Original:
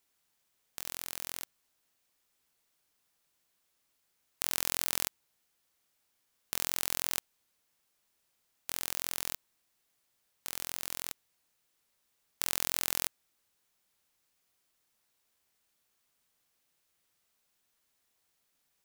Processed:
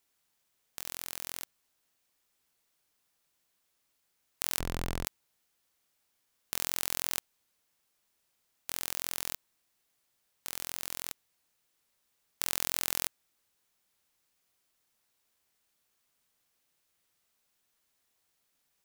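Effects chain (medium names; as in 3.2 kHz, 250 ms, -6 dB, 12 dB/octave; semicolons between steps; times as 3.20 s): 4.59–5.05 s: tilt EQ -4.5 dB/octave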